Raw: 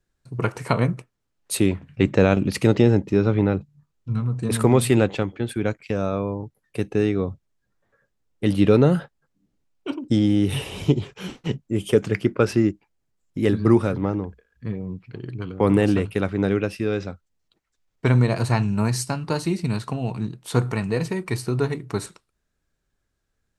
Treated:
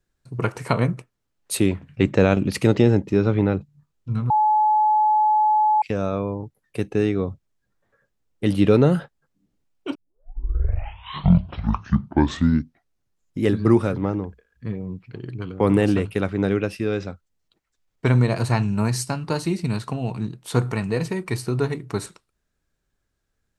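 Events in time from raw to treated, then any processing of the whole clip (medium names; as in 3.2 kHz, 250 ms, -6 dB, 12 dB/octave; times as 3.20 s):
4.30–5.82 s: bleep 855 Hz -14.5 dBFS
9.95 s: tape start 3.47 s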